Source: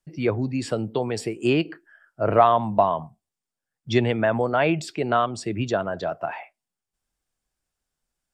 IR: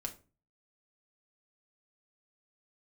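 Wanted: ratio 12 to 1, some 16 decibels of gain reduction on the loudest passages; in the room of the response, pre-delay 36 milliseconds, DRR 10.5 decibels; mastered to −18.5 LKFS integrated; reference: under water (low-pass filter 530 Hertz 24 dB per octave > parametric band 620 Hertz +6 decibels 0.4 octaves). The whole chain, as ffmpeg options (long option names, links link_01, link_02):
-filter_complex "[0:a]acompressor=threshold=-27dB:ratio=12,asplit=2[link_01][link_02];[1:a]atrim=start_sample=2205,adelay=36[link_03];[link_02][link_03]afir=irnorm=-1:irlink=0,volume=-9.5dB[link_04];[link_01][link_04]amix=inputs=2:normalize=0,lowpass=frequency=530:width=0.5412,lowpass=frequency=530:width=1.3066,equalizer=frequency=620:width_type=o:width=0.4:gain=6,volume=16dB"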